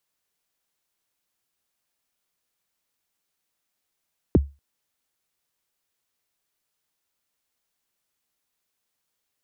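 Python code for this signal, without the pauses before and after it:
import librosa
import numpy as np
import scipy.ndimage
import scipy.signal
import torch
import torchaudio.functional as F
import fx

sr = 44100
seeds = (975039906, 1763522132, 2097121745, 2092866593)

y = fx.drum_kick(sr, seeds[0], length_s=0.24, level_db=-9.0, start_hz=460.0, end_hz=70.0, sweep_ms=25.0, decay_s=0.26, click=False)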